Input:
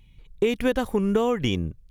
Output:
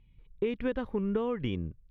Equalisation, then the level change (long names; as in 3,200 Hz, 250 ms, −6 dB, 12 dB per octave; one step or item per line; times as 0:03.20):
high-frequency loss of the air 350 metres
parametric band 720 Hz −6.5 dB 0.29 octaves
−7.0 dB